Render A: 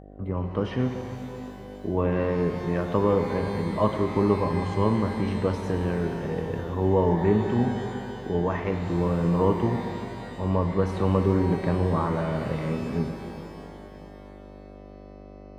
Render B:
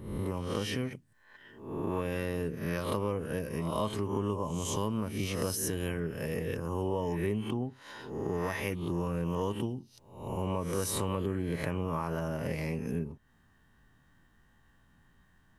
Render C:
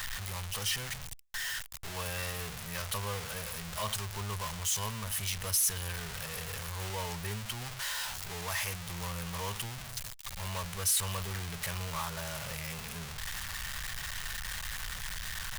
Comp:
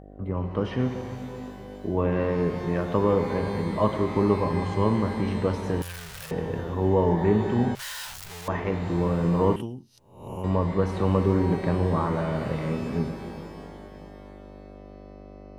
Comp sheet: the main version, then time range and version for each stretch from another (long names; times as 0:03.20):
A
0:05.82–0:06.31: punch in from C
0:07.75–0:08.48: punch in from C
0:09.56–0:10.44: punch in from B